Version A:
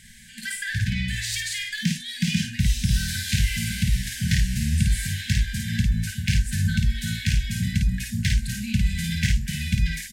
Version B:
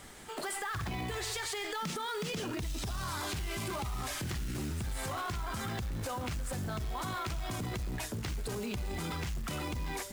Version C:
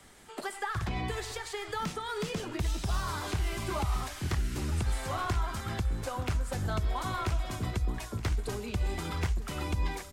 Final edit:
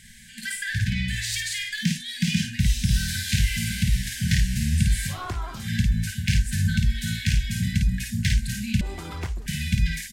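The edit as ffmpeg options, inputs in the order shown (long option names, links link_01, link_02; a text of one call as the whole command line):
ffmpeg -i take0.wav -i take1.wav -i take2.wav -filter_complex "[2:a]asplit=2[link_01][link_02];[0:a]asplit=3[link_03][link_04][link_05];[link_03]atrim=end=5.23[link_06];[link_01]atrim=start=5.07:end=5.69[link_07];[link_04]atrim=start=5.53:end=8.812[link_08];[link_02]atrim=start=8.808:end=9.462[link_09];[link_05]atrim=start=9.458[link_10];[link_06][link_07]acrossfade=duration=0.16:curve1=tri:curve2=tri[link_11];[link_11][link_08]acrossfade=duration=0.16:curve1=tri:curve2=tri[link_12];[link_12][link_09]acrossfade=duration=0.004:curve1=hsin:curve2=hsin[link_13];[link_13][link_10]acrossfade=duration=0.004:curve1=hsin:curve2=hsin" out.wav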